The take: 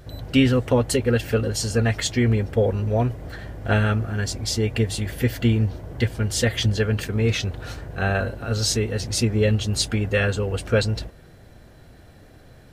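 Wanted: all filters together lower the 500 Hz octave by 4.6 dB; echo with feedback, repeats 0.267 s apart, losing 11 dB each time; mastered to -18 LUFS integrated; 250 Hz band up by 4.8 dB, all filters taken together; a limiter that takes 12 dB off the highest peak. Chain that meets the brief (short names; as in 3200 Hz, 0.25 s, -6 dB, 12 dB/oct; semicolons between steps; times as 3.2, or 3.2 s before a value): bell 250 Hz +7 dB; bell 500 Hz -7.5 dB; limiter -14.5 dBFS; feedback echo 0.267 s, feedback 28%, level -11 dB; gain +6.5 dB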